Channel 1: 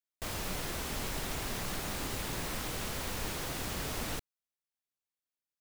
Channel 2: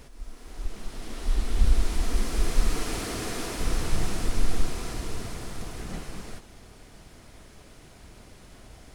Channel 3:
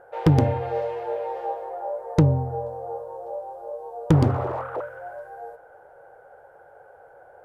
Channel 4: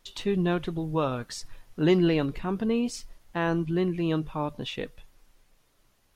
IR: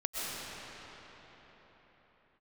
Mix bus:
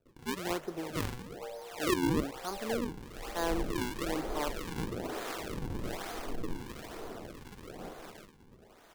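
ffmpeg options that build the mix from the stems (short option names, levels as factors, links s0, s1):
-filter_complex "[0:a]volume=0.596[s0];[1:a]adelay=1900,volume=1.12[s1];[2:a]adelay=700,volume=0.531[s2];[3:a]lowpass=f=3400:w=0.5412,lowpass=f=3400:w=1.3066,volume=0.841[s3];[s0][s2]amix=inputs=2:normalize=0,acompressor=threshold=0.0141:ratio=6,volume=1[s4];[s1][s3][s4]amix=inputs=3:normalize=0,acrossover=split=300 2200:gain=0.112 1 0.178[s5][s6][s7];[s5][s6][s7]amix=inputs=3:normalize=0,acrusher=samples=40:mix=1:aa=0.000001:lfo=1:lforange=64:lforate=1.1,acrossover=split=940[s8][s9];[s8]aeval=exprs='val(0)*(1-0.5/2+0.5/2*cos(2*PI*1.4*n/s))':c=same[s10];[s9]aeval=exprs='val(0)*(1-0.5/2-0.5/2*cos(2*PI*1.4*n/s))':c=same[s11];[s10][s11]amix=inputs=2:normalize=0"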